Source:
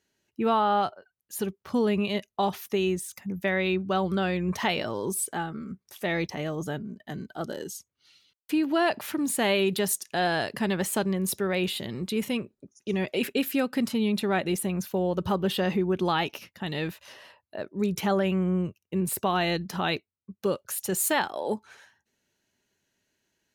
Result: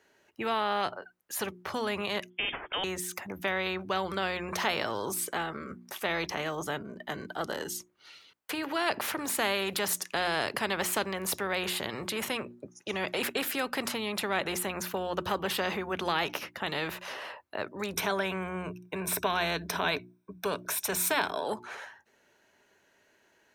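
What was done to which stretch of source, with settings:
0:02.30–0:02.84: voice inversion scrambler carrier 3,400 Hz
0:17.93–0:21.44: EQ curve with evenly spaced ripples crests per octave 1.6, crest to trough 12 dB
whole clip: three-way crossover with the lows and the highs turned down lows −13 dB, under 370 Hz, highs −12 dB, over 2,100 Hz; mains-hum notches 60/120/180/240/300/360 Hz; every bin compressed towards the loudest bin 2 to 1; level −1.5 dB

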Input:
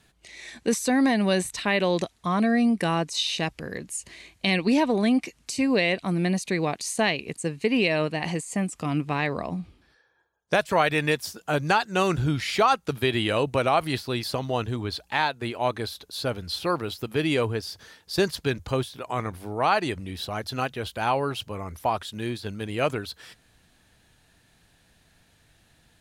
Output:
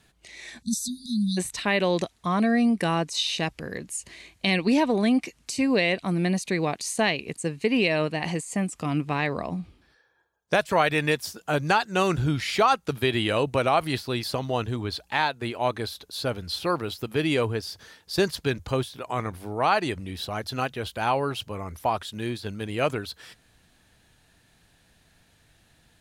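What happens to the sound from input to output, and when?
0:00.62–0:01.37: time-frequency box erased 240–3,400 Hz

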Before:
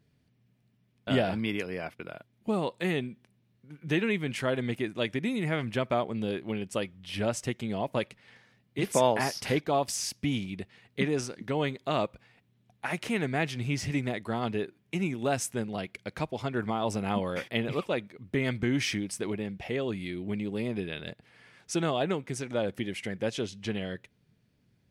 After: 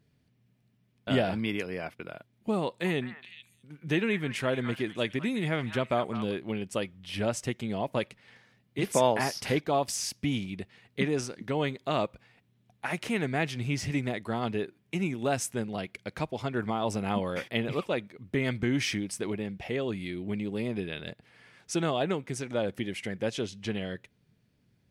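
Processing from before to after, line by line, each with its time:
0:02.65–0:06.34: echo through a band-pass that steps 209 ms, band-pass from 1,300 Hz, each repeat 1.4 octaves, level −6 dB

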